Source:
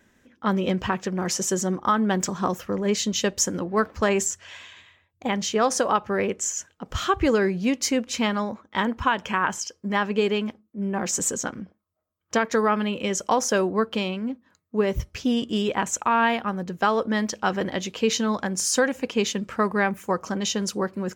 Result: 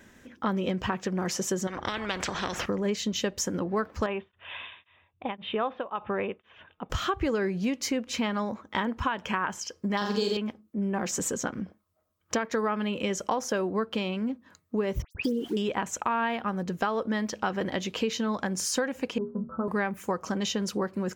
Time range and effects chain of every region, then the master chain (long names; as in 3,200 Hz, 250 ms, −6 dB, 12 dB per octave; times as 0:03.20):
0:01.67–0:02.66: head-to-tape spacing loss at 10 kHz 20 dB + every bin compressed towards the loudest bin 4 to 1
0:04.06–0:06.90: Chebyshev low-pass with heavy ripple 3,700 Hz, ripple 6 dB + tremolo along a rectified sine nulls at 1.9 Hz
0:09.97–0:10.37: de-essing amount 30% + high shelf with overshoot 3,300 Hz +12.5 dB, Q 3 + flutter between parallel walls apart 7.6 metres, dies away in 0.6 s
0:15.02–0:15.57: spectral envelope exaggerated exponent 3 + centre clipping without the shift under −41 dBFS + all-pass dispersion highs, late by 98 ms, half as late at 2,800 Hz
0:19.18–0:19.68: Butterworth low-pass 1,400 Hz 96 dB per octave + parametric band 190 Hz +13.5 dB 0.4 octaves + stiff-string resonator 75 Hz, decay 0.31 s, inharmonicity 0.008
whole clip: dynamic equaliser 7,900 Hz, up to −7 dB, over −41 dBFS, Q 0.75; downward compressor 3 to 1, threshold −36 dBFS; level +6.5 dB